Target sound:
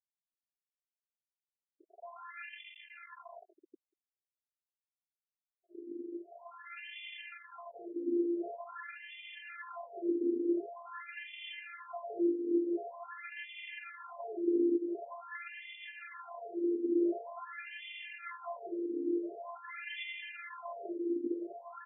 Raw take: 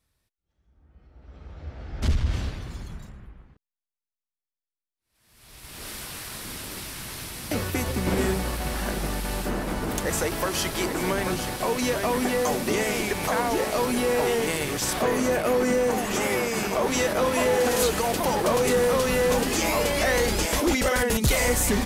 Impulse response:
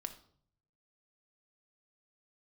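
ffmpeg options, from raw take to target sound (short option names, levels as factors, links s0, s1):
-af "highpass=f=180:w=0.5412,highpass=f=180:w=1.3066,asubboost=boost=10.5:cutoff=240,areverse,acompressor=threshold=0.0562:ratio=10,areverse,aecho=1:1:918|1836|2754|3672|4590:0.422|0.169|0.0675|0.027|0.0108,aeval=exprs='val(0)*gte(abs(val(0)),0.0237)':c=same,afftfilt=real='hypot(re,im)*cos(PI*b)':imag='0':win_size=512:overlap=0.75,aphaser=in_gain=1:out_gain=1:delay=4.3:decay=0.34:speed=0.82:type=sinusoidal,afftfilt=real='re*between(b*sr/1024,350*pow(2600/350,0.5+0.5*sin(2*PI*0.46*pts/sr))/1.41,350*pow(2600/350,0.5+0.5*sin(2*PI*0.46*pts/sr))*1.41)':imag='im*between(b*sr/1024,350*pow(2600/350,0.5+0.5*sin(2*PI*0.46*pts/sr))/1.41,350*pow(2600/350,0.5+0.5*sin(2*PI*0.46*pts/sr))*1.41)':win_size=1024:overlap=0.75,volume=1.19"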